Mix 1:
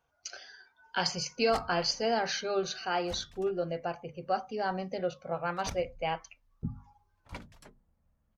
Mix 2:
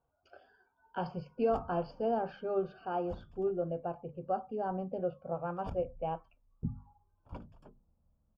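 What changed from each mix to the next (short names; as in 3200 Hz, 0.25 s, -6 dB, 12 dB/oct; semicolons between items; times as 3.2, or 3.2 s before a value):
speech: add air absorption 280 m; master: add running mean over 22 samples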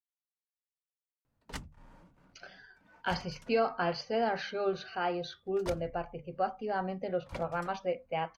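speech: entry +2.10 s; master: remove running mean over 22 samples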